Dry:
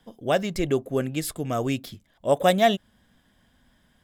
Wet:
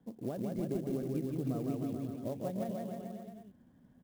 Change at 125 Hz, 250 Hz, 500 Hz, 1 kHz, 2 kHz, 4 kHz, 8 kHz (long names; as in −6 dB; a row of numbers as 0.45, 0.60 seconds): −7.0 dB, −7.0 dB, −15.0 dB, −21.0 dB, −28.0 dB, below −25 dB, −20.5 dB